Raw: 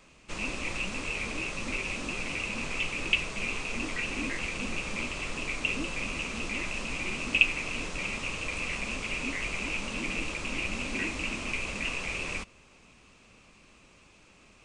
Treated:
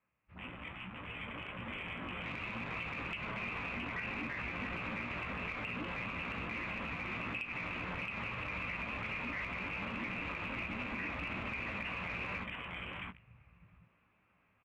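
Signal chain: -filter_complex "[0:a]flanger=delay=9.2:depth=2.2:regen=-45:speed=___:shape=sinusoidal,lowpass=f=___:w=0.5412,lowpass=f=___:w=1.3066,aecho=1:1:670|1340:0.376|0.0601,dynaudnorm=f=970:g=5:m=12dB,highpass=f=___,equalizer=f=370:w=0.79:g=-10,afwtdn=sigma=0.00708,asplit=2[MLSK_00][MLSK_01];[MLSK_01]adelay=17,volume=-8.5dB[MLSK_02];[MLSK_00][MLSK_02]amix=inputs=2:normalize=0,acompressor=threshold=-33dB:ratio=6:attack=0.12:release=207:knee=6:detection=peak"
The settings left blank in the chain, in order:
1.2, 2100, 2100, 79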